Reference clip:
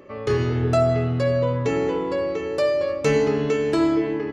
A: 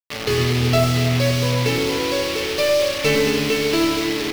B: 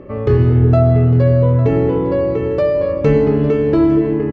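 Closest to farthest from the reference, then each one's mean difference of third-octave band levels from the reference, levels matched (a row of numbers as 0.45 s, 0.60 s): B, A; 6.0 dB, 10.5 dB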